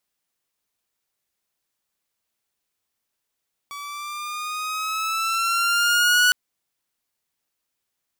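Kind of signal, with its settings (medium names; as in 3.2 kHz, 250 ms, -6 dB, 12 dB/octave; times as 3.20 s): gliding synth tone saw, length 2.61 s, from 1.14 kHz, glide +4.5 st, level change +19 dB, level -11 dB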